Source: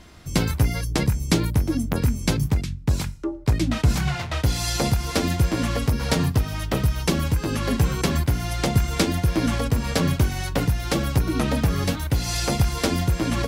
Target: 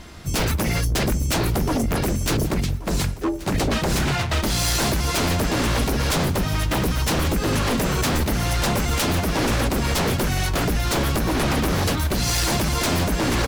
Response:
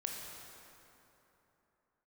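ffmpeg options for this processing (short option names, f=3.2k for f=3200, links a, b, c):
-filter_complex "[0:a]acontrast=57,asplit=2[a][b];[b]asetrate=55563,aresample=44100,atempo=0.793701,volume=-13dB[c];[a][c]amix=inputs=2:normalize=0,aeval=exprs='0.158*(abs(mod(val(0)/0.158+3,4)-2)-1)':c=same,aecho=1:1:1130|2260|3390|4520|5650:0.126|0.0718|0.0409|0.0233|0.0133"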